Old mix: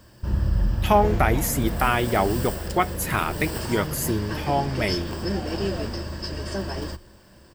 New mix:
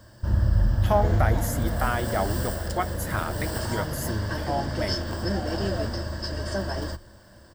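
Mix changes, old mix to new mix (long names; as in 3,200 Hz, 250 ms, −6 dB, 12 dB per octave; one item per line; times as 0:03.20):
speech −6.5 dB
master: add thirty-one-band graphic EQ 100 Hz +7 dB, 160 Hz −5 dB, 400 Hz −5 dB, 630 Hz +5 dB, 1,600 Hz +4 dB, 2,500 Hz −10 dB, 16,000 Hz −5 dB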